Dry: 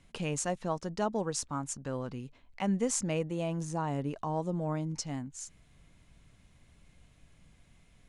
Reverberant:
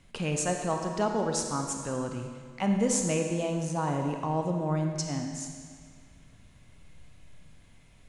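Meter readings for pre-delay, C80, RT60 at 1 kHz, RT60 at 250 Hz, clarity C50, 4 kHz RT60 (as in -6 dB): 31 ms, 5.0 dB, 1.9 s, 1.9 s, 3.5 dB, 1.7 s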